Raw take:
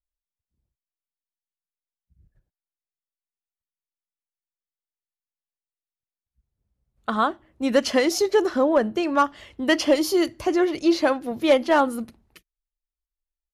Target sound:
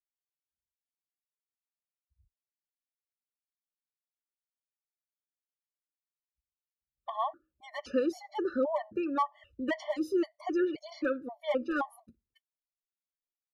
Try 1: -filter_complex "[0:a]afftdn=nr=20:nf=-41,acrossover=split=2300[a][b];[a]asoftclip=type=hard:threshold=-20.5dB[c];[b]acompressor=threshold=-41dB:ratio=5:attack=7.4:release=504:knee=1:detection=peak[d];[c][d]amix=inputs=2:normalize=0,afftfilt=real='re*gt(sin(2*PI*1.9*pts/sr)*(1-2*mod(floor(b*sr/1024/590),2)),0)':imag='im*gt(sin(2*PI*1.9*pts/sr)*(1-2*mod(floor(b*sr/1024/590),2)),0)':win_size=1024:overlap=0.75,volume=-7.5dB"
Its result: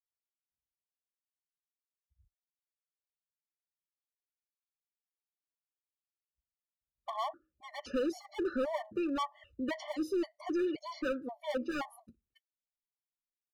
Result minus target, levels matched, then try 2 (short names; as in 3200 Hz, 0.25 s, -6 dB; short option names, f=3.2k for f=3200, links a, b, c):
hard clip: distortion +22 dB
-filter_complex "[0:a]afftdn=nr=20:nf=-41,acrossover=split=2300[a][b];[a]asoftclip=type=hard:threshold=-10.5dB[c];[b]acompressor=threshold=-41dB:ratio=5:attack=7.4:release=504:knee=1:detection=peak[d];[c][d]amix=inputs=2:normalize=0,afftfilt=real='re*gt(sin(2*PI*1.9*pts/sr)*(1-2*mod(floor(b*sr/1024/590),2)),0)':imag='im*gt(sin(2*PI*1.9*pts/sr)*(1-2*mod(floor(b*sr/1024/590),2)),0)':win_size=1024:overlap=0.75,volume=-7.5dB"